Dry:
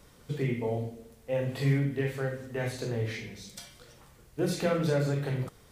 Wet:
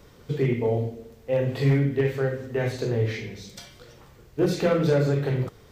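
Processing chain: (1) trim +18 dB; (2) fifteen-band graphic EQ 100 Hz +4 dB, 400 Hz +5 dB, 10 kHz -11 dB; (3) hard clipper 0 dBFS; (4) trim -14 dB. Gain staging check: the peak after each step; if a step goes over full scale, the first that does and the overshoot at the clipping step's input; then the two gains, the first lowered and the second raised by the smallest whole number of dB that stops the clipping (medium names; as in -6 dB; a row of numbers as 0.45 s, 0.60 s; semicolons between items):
+2.5 dBFS, +4.5 dBFS, 0.0 dBFS, -14.0 dBFS; step 1, 4.5 dB; step 1 +13 dB, step 4 -9 dB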